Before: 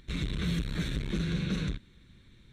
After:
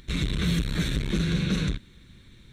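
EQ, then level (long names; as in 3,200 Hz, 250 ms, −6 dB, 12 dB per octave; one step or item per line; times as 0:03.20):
high-shelf EQ 5,300 Hz +5 dB
+5.5 dB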